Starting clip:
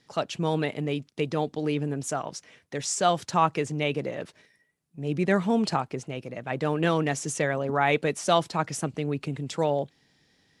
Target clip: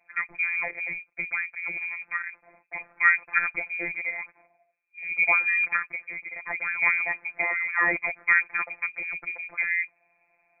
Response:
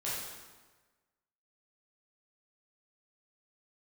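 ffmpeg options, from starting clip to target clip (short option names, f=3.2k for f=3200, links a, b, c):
-af "lowpass=f=2.2k:t=q:w=0.5098,lowpass=f=2.2k:t=q:w=0.6013,lowpass=f=2.2k:t=q:w=0.9,lowpass=f=2.2k:t=q:w=2.563,afreqshift=-2600,afftfilt=real='hypot(re,im)*cos(PI*b)':imag='0':win_size=1024:overlap=0.75,volume=3.5dB"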